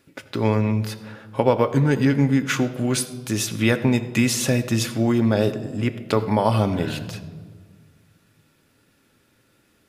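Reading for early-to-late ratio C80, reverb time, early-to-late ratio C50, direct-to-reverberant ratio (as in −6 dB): 14.0 dB, 1.7 s, 13.0 dB, 7.0 dB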